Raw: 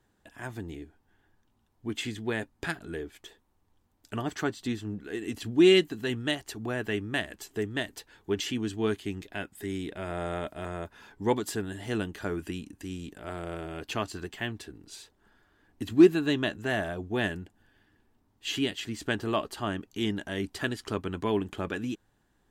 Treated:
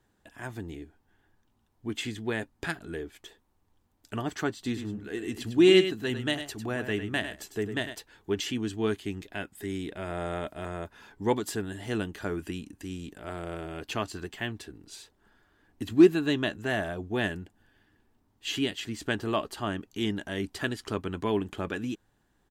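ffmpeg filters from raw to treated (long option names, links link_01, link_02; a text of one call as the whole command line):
ffmpeg -i in.wav -filter_complex "[0:a]asplit=3[link_01][link_02][link_03];[link_01]afade=type=out:start_time=4.64:duration=0.02[link_04];[link_02]aecho=1:1:101:0.335,afade=type=in:start_time=4.64:duration=0.02,afade=type=out:start_time=7.94:duration=0.02[link_05];[link_03]afade=type=in:start_time=7.94:duration=0.02[link_06];[link_04][link_05][link_06]amix=inputs=3:normalize=0" out.wav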